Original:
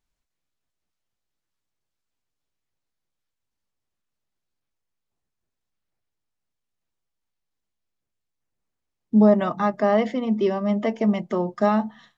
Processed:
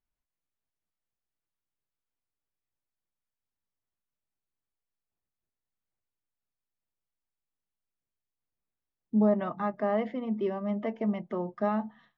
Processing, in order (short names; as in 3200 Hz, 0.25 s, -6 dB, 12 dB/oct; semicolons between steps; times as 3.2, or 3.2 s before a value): LPF 2600 Hz 12 dB/oct; gain -8.5 dB